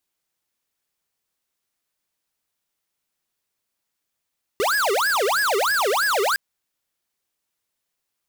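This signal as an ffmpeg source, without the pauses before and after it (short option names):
-f lavfi -i "aevalsrc='0.0944*(2*lt(mod((1038*t-652/(2*PI*3.1)*sin(2*PI*3.1*t)),1),0.5)-1)':d=1.76:s=44100"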